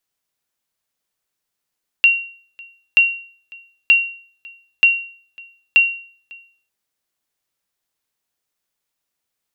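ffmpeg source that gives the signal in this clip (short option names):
-f lavfi -i "aevalsrc='0.596*(sin(2*PI*2750*mod(t,0.93))*exp(-6.91*mod(t,0.93)/0.48)+0.0473*sin(2*PI*2750*max(mod(t,0.93)-0.55,0))*exp(-6.91*max(mod(t,0.93)-0.55,0)/0.48))':d=4.65:s=44100"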